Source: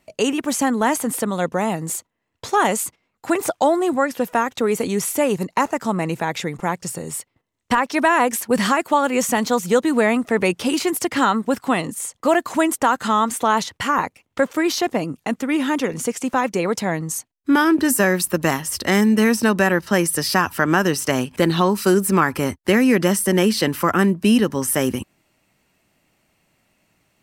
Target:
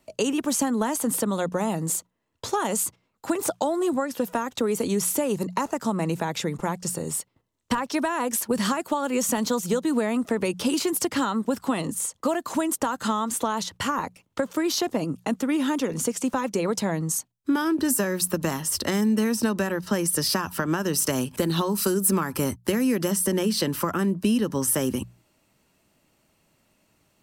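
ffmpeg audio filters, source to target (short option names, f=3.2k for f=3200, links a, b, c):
-filter_complex "[0:a]bandreject=f=740:w=13,acompressor=threshold=-18dB:ratio=6,asettb=1/sr,asplit=3[a][b][c];[a]atrim=end=20.934[d];[b]atrim=start=20.93:end=23.11,asetpts=PTS-STARTPTS,afade=t=in:d=0.004:c=qsin,afade=t=out:st=2.176:d=0.004:c=qsin,equalizer=f=13k:t=o:w=1.2:g=6.5[e];[c]atrim=start=23.106[f];[d][e]acrossfade=d=0.004:c1=hsin:c2=qsin[g];[g][f]acrossfade=d=0.004:c1=qsin:c2=hsin,acrossover=split=250|3000[h][i][j];[i]acompressor=threshold=-27dB:ratio=1.5[k];[h][k][j]amix=inputs=3:normalize=0,equalizer=f=2.1k:t=o:w=0.81:g=-6,bandreject=f=60:t=h:w=6,bandreject=f=120:t=h:w=6,bandreject=f=180:t=h:w=6"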